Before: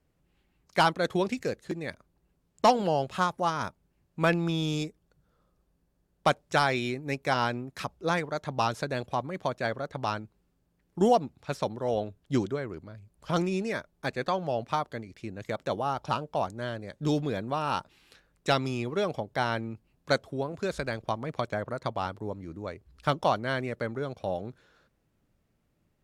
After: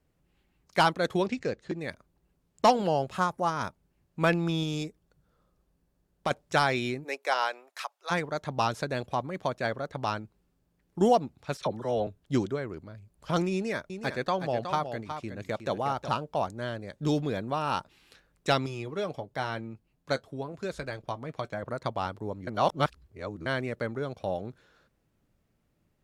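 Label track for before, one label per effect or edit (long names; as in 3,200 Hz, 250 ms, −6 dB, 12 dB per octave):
1.260000	1.790000	Bessel low-pass filter 5,200 Hz, order 4
2.970000	3.570000	dynamic equaliser 3,400 Hz, up to −6 dB, over −47 dBFS, Q 1.2
4.630000	6.310000	downward compressor 2 to 1, threshold −28 dBFS
7.030000	8.100000	high-pass filter 360 Hz → 830 Hz 24 dB per octave
11.570000	12.070000	all-pass dispersion lows, late by 41 ms, half as late at 1,200 Hz
13.530000	16.090000	single-tap delay 367 ms −8.5 dB
18.660000	21.630000	flanger 1 Hz, delay 5.7 ms, depth 1.4 ms, regen −56%
22.470000	23.460000	reverse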